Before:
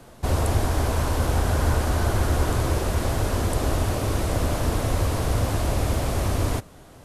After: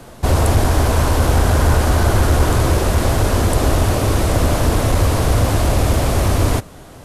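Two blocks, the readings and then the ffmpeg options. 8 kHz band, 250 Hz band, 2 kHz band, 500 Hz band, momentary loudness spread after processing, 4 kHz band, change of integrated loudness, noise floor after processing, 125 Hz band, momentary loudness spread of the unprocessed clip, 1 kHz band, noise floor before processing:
+8.0 dB, +8.0 dB, +8.0 dB, +8.0 dB, 2 LU, +8.0 dB, +8.0 dB, -39 dBFS, +8.0 dB, 2 LU, +8.0 dB, -47 dBFS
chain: -af "aeval=exprs='clip(val(0),-1,0.15)':c=same,acontrast=37,volume=3dB"

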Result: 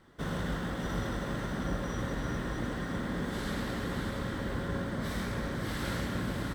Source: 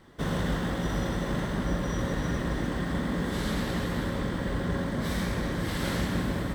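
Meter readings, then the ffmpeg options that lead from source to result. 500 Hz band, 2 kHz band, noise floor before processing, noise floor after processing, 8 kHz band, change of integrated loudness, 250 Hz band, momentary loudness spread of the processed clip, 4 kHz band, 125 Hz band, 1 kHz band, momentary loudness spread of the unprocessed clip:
-4.5 dB, -3.0 dB, -33 dBFS, -37 dBFS, -4.5 dB, -4.5 dB, -5.0 dB, 1 LU, -4.5 dB, -5.0 dB, -3.5 dB, 1 LU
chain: -filter_complex "[0:a]equalizer=f=1.4k:t=o:w=0.32:g=4.5,asplit=2[a][b];[b]aecho=0:1:591:0.473[c];[a][c]amix=inputs=2:normalize=0,volume=-5.5dB"

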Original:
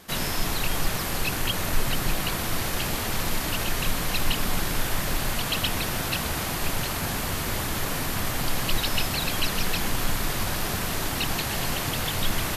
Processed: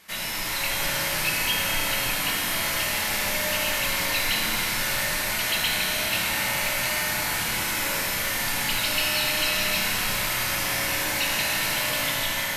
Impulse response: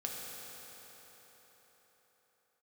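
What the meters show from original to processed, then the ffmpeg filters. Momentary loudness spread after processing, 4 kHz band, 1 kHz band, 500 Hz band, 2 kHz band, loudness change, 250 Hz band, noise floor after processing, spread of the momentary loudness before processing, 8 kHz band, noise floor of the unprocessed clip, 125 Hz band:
2 LU, +4.0 dB, +1.0 dB, +0.5 dB, +6.5 dB, +3.5 dB, -4.5 dB, -28 dBFS, 2 LU, +3.5 dB, -29 dBFS, -7.5 dB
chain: -filter_complex "[0:a]tiltshelf=f=740:g=-5.5,bandreject=f=50:t=h:w=6,bandreject=f=100:t=h:w=6,dynaudnorm=f=150:g=7:m=4dB,equalizer=f=2.2k:t=o:w=0.41:g=7[a];[1:a]atrim=start_sample=2205,asetrate=52920,aresample=44100[b];[a][b]afir=irnorm=-1:irlink=0,asoftclip=type=tanh:threshold=-10dB,flanger=delay=9.9:depth=1.3:regen=-51:speed=0.43:shape=triangular"

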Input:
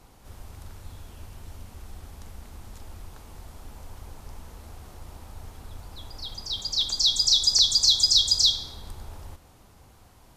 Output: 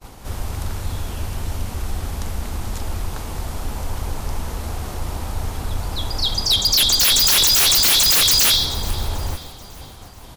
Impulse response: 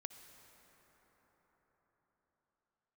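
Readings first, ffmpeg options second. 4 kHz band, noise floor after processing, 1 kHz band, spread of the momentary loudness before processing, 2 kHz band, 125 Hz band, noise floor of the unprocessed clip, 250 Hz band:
+5.0 dB, -39 dBFS, +18.0 dB, 19 LU, n/a, +16.0 dB, -54 dBFS, +16.5 dB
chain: -filter_complex "[0:a]aeval=exprs='0.473*sin(PI/2*7.94*val(0)/0.473)':c=same,agate=range=-33dB:threshold=-27dB:ratio=3:detection=peak,asplit=5[a][b][c][d][e];[b]adelay=436,afreqshift=-37,volume=-18.5dB[f];[c]adelay=872,afreqshift=-74,volume=-24.7dB[g];[d]adelay=1308,afreqshift=-111,volume=-30.9dB[h];[e]adelay=1744,afreqshift=-148,volume=-37.1dB[i];[a][f][g][h][i]amix=inputs=5:normalize=0,volume=-5dB"

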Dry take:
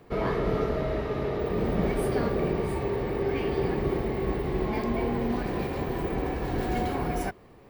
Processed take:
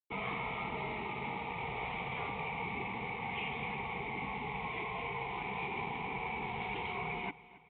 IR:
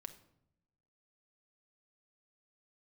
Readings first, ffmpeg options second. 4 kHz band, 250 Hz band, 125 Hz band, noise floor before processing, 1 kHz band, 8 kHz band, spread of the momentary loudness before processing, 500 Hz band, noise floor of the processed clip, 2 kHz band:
-2.0 dB, -16.0 dB, -14.0 dB, -52 dBFS, -3.5 dB, n/a, 4 LU, -17.0 dB, -56 dBFS, +1.0 dB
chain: -filter_complex "[0:a]crystalizer=i=7:c=0,acontrast=51,aresample=8000,aeval=exprs='sgn(val(0))*max(abs(val(0))-0.0141,0)':c=same,aresample=44100,asplit=3[a][b][c];[a]bandpass=f=300:t=q:w=8,volume=0dB[d];[b]bandpass=f=870:t=q:w=8,volume=-6dB[e];[c]bandpass=f=2.24k:t=q:w=8,volume=-9dB[f];[d][e][f]amix=inputs=3:normalize=0,afftfilt=real='re*lt(hypot(re,im),0.0562)':imag='im*lt(hypot(re,im),0.0562)':win_size=1024:overlap=0.75,aecho=1:1:272|544|816|1088:0.112|0.0527|0.0248|0.0116,volume=4.5dB"

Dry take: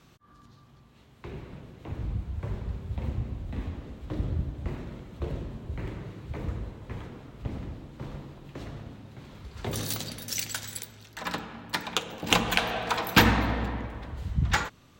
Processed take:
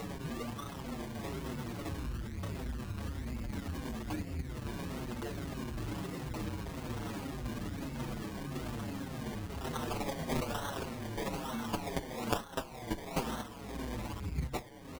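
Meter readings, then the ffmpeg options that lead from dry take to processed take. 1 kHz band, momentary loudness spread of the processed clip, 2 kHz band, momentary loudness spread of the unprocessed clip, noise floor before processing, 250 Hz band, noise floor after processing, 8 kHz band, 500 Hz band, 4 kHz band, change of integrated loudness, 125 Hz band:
-7.5 dB, 4 LU, -13.0 dB, 18 LU, -57 dBFS, -3.5 dB, -46 dBFS, -10.0 dB, -3.5 dB, -13.0 dB, -8.5 dB, -6.5 dB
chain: -filter_complex "[0:a]aeval=exprs='val(0)+0.5*0.0398*sgn(val(0))':c=same,agate=range=-19dB:threshold=-21dB:ratio=16:detection=peak,bandreject=f=134.3:t=h:w=4,bandreject=f=268.6:t=h:w=4,bandreject=f=402.9:t=h:w=4,bandreject=f=537.2:t=h:w=4,bandreject=f=671.5:t=h:w=4,bandreject=f=805.8:t=h:w=4,bandreject=f=940.1:t=h:w=4,bandreject=f=1.0744k:t=h:w=4,bandreject=f=1.2087k:t=h:w=4,bandreject=f=1.343k:t=h:w=4,bandreject=f=1.4773k:t=h:w=4,bandreject=f=1.6116k:t=h:w=4,bandreject=f=1.7459k:t=h:w=4,bandreject=f=1.8802k:t=h:w=4,bandreject=f=2.0145k:t=h:w=4,bandreject=f=2.1488k:t=h:w=4,bandreject=f=2.2831k:t=h:w=4,bandreject=f=2.4174k:t=h:w=4,bandreject=f=2.5517k:t=h:w=4,bandreject=f=2.686k:t=h:w=4,bandreject=f=2.8203k:t=h:w=4,bandreject=f=2.9546k:t=h:w=4,bandreject=f=3.0889k:t=h:w=4,bandreject=f=3.2232k:t=h:w=4,bandreject=f=3.3575k:t=h:w=4,bandreject=f=3.4918k:t=h:w=4,bandreject=f=3.6261k:t=h:w=4,bandreject=f=3.7604k:t=h:w=4,bandreject=f=3.8947k:t=h:w=4,bandreject=f=4.029k:t=h:w=4,bandreject=f=4.1633k:t=h:w=4,afftdn=nr=12:nf=-55,aresample=16000,aresample=44100,equalizer=f=250:t=o:w=1:g=7,equalizer=f=1k:t=o:w=1:g=6,equalizer=f=2k:t=o:w=1:g=6,equalizer=f=4k:t=o:w=1:g=7,acompressor=threshold=-44dB:ratio=10,aemphasis=mode=production:type=50fm,acrusher=samples=26:mix=1:aa=0.000001:lfo=1:lforange=15.6:lforate=1.1,acompressor=mode=upward:threshold=-50dB:ratio=2.5,asplit=2[a][b];[b]adelay=6.5,afreqshift=-1.7[c];[a][c]amix=inputs=2:normalize=1,volume=12.5dB"

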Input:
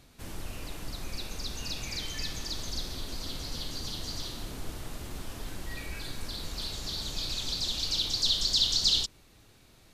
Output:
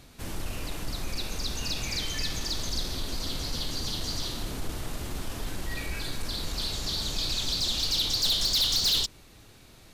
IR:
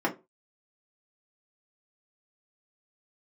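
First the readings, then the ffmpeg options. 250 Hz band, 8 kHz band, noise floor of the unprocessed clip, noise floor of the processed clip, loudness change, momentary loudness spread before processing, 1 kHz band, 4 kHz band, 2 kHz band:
+4.5 dB, +3.5 dB, -58 dBFS, -53 dBFS, +2.5 dB, 18 LU, +5.0 dB, +2.0 dB, +5.0 dB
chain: -af "asoftclip=type=tanh:threshold=-26dB,volume=5.5dB"

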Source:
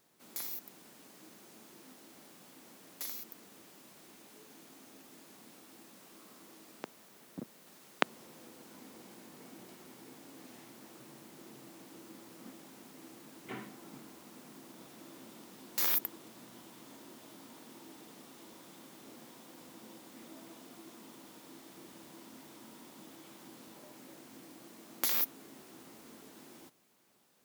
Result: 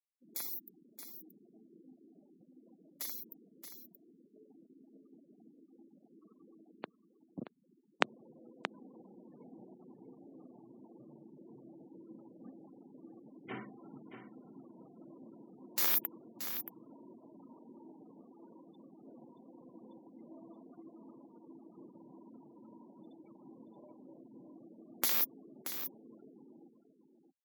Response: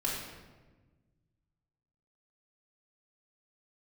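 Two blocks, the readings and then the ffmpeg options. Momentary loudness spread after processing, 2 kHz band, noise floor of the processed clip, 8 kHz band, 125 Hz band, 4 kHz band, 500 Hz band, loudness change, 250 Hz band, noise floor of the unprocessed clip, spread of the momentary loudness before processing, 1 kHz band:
22 LU, 0.0 dB, -69 dBFS, -0.5 dB, -0.5 dB, -0.5 dB, 0.0 dB, +4.5 dB, +0.5 dB, -59 dBFS, 19 LU, -0.5 dB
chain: -filter_complex "[0:a]afftfilt=real='re*gte(hypot(re,im),0.00447)':imag='im*gte(hypot(re,im),0.00447)':win_size=1024:overlap=0.75,asplit=2[a][b];[b]aecho=0:1:627:0.335[c];[a][c]amix=inputs=2:normalize=0"

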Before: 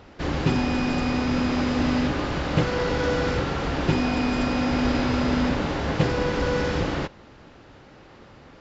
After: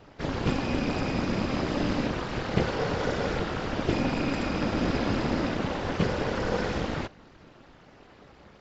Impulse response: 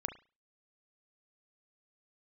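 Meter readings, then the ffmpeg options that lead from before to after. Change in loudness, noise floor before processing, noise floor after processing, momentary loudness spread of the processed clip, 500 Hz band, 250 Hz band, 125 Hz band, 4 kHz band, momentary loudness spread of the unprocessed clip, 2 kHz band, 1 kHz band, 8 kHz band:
-4.5 dB, -49 dBFS, -54 dBFS, 3 LU, -3.5 dB, -5.0 dB, -4.5 dB, -4.5 dB, 3 LU, -4.5 dB, -4.0 dB, n/a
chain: -af "afftfilt=real='hypot(re,im)*cos(2*PI*random(0))':imag='hypot(re,im)*sin(2*PI*random(1))':win_size=512:overlap=0.75,tremolo=f=290:d=0.75,volume=5dB"

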